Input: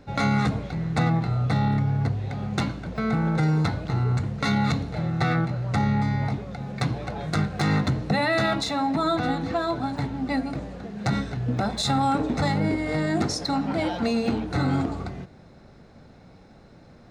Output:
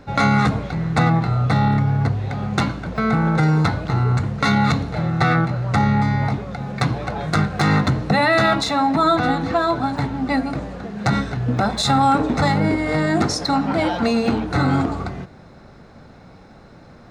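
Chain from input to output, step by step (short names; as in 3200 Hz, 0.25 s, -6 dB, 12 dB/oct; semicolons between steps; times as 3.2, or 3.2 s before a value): bell 1200 Hz +4.5 dB 1.2 oct; gain +5 dB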